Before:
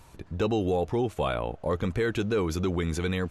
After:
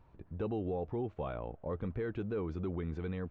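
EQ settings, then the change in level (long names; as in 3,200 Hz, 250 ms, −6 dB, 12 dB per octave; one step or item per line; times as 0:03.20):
head-to-tape spacing loss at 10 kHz 42 dB
−8.0 dB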